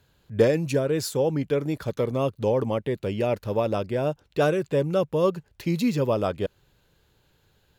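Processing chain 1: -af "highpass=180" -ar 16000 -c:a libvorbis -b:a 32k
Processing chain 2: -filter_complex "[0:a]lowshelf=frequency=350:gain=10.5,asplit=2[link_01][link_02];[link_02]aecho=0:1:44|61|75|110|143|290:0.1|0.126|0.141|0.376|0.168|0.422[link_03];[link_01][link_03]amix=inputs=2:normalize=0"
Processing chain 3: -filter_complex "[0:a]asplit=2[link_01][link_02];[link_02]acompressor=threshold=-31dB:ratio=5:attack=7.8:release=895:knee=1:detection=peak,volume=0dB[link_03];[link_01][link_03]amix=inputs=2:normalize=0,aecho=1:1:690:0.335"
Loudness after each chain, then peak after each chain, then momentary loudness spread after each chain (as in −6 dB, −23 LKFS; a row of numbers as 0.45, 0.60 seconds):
−26.0, −19.0, −23.0 LKFS; −7.5, −2.0, −6.0 dBFS; 7, 5, 10 LU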